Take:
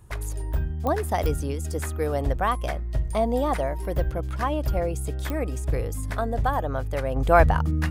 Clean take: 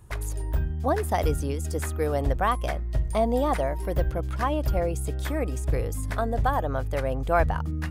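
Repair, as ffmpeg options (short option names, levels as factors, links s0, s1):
-af "adeclick=t=4,asetnsamples=n=441:p=0,asendcmd='7.16 volume volume -5.5dB',volume=1"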